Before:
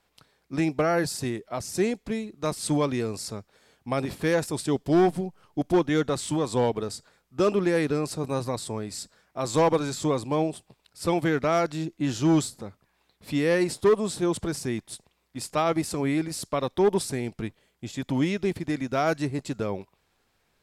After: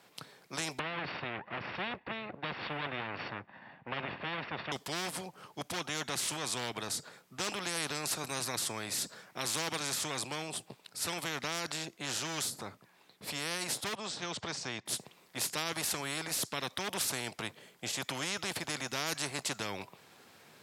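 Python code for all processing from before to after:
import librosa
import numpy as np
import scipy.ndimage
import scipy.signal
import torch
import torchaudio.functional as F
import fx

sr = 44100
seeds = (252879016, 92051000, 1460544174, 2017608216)

y = fx.chain(x, sr, fx.lower_of_two(delay_ms=1.1),
    fx.lowpass(hz=2400.0, slope=24),
    fx.resample_bad(factor=4, down='none', up='filtered'), at=(0.79, 4.72))
y = fx.chain(y, sr, fx.lowpass(hz=6100.0, slope=24),
    fx.upward_expand(threshold_db=-38.0, expansion=1.5), at=(13.95, 14.86))
y = scipy.signal.sosfilt(scipy.signal.butter(4, 120.0, 'highpass', fs=sr, output='sos'), y)
y = fx.rider(y, sr, range_db=4, speed_s=2.0)
y = fx.spectral_comp(y, sr, ratio=4.0)
y = y * librosa.db_to_amplitude(-7.5)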